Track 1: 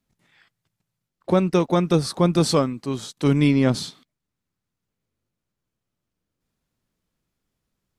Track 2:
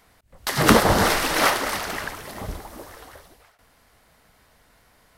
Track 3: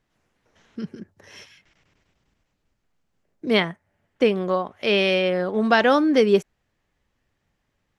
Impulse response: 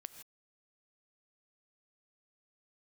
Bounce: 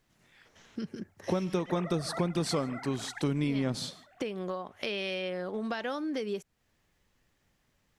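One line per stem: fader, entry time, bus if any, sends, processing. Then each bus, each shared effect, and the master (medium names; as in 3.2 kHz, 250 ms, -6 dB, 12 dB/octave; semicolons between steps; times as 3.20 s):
-4.5 dB, 0.00 s, no bus, send -6 dB, none
-18.5 dB, 1.10 s, bus A, no send, formants replaced by sine waves
-0.5 dB, 0.00 s, bus A, no send, compression 2.5:1, threshold -31 dBFS, peak gain reduction 12.5 dB
bus A: 0.0 dB, treble shelf 3.8 kHz +7 dB; compression 2:1, threshold -34 dBFS, peak gain reduction 6.5 dB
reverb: on, pre-delay 3 ms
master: compression 5:1, threshold -27 dBFS, peak gain reduction 11 dB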